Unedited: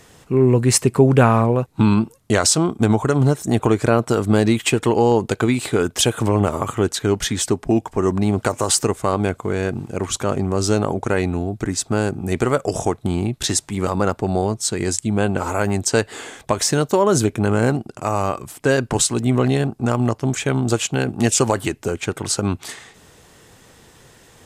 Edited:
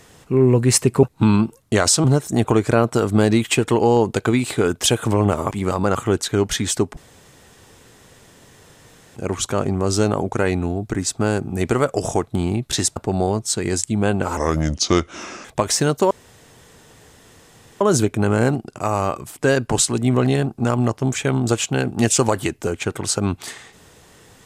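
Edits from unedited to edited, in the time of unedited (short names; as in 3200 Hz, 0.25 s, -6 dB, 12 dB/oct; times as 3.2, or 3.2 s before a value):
1.03–1.61 cut
2.62–3.19 cut
7.68–9.87 room tone
13.67–14.11 move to 6.66
15.52–16.36 speed 78%
17.02 insert room tone 1.70 s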